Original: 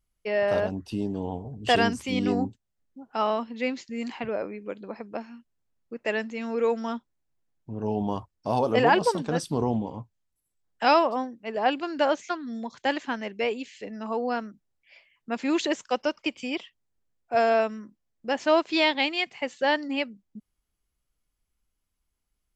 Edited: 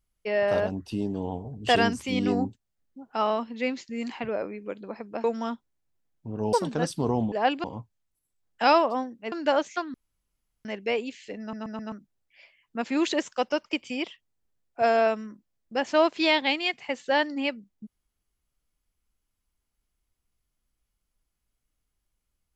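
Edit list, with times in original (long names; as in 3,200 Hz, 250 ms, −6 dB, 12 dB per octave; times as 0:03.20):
0:05.24–0:06.67: remove
0:07.96–0:09.06: remove
0:11.53–0:11.85: move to 0:09.85
0:12.47–0:13.18: fill with room tone
0:13.93: stutter in place 0.13 s, 4 plays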